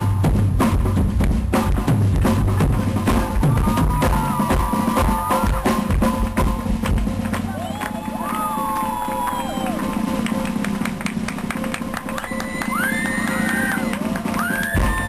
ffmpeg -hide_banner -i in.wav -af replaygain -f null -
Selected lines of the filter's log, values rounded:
track_gain = +3.1 dB
track_peak = 0.253